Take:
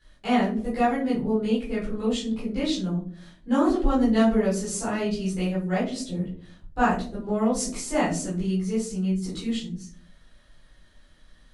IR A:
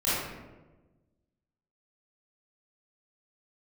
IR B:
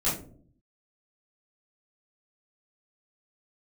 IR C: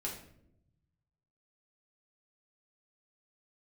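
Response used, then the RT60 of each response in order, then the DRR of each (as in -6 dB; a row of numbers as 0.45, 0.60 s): B; 1.2 s, not exponential, 0.75 s; -12.5, -11.0, -4.0 dB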